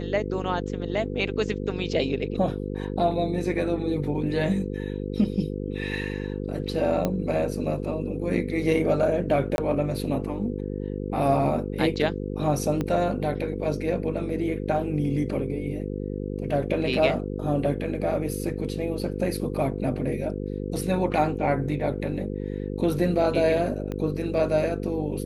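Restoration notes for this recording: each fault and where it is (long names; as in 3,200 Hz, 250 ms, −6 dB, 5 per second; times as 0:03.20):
mains buzz 50 Hz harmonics 10 −31 dBFS
0:07.05: click −12 dBFS
0:09.56–0:09.58: drop-out 21 ms
0:12.81: click −15 dBFS
0:23.92: click −20 dBFS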